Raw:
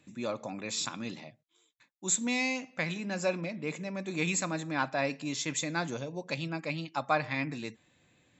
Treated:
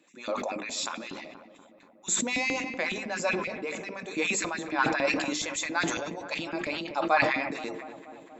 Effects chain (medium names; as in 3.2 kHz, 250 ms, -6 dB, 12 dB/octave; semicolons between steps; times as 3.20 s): LFO high-pass saw up 7.2 Hz 210–2700 Hz; hum notches 50/100/150/200/250/300/350/400/450 Hz; filtered feedback delay 239 ms, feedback 77%, low-pass 1.7 kHz, level -14.5 dB; decay stretcher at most 41 dB/s